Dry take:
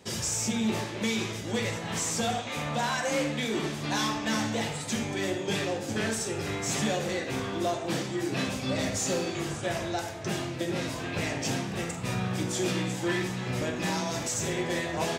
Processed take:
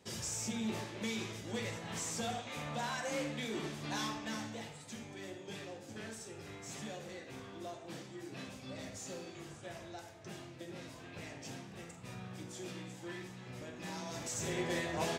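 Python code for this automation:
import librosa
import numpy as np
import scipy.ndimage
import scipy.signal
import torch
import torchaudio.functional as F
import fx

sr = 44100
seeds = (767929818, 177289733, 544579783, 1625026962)

y = fx.gain(x, sr, db=fx.line((4.05, -9.5), (4.75, -16.5), (13.68, -16.5), (14.6, -6.0)))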